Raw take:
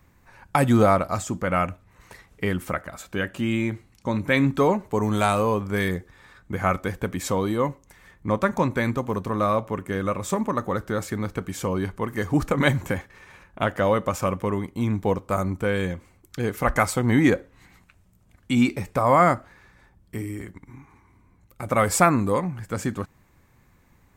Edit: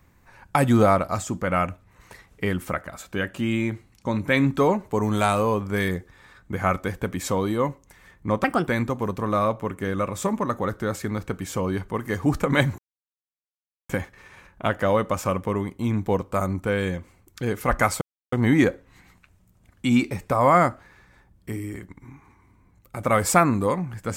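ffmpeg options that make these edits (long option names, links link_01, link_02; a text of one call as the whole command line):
ffmpeg -i in.wav -filter_complex "[0:a]asplit=5[link_01][link_02][link_03][link_04][link_05];[link_01]atrim=end=8.444[link_06];[link_02]atrim=start=8.44:end=8.75,asetpts=PTS-STARTPTS,asetrate=58653,aresample=44100[link_07];[link_03]atrim=start=8.746:end=12.86,asetpts=PTS-STARTPTS,afade=type=out:start_time=4.11:duration=0.004:curve=hsin,apad=pad_dur=1.11[link_08];[link_04]atrim=start=12.86:end=16.98,asetpts=PTS-STARTPTS,afade=type=in:duration=0.004:curve=hsin,afade=type=out:start_time=4.116:duration=0.004:curve=hsin,apad=pad_dur=0.31[link_09];[link_05]atrim=start=16.98,asetpts=PTS-STARTPTS,afade=type=in:duration=0.004:curve=hsin[link_10];[link_06][link_07]acrossfade=duration=0.004:curve1=hsin:curve2=hsin[link_11];[link_08][link_09][link_10]concat=n=3:v=0:a=1[link_12];[link_11][link_12]acrossfade=duration=0.004:curve1=hsin:curve2=hsin" out.wav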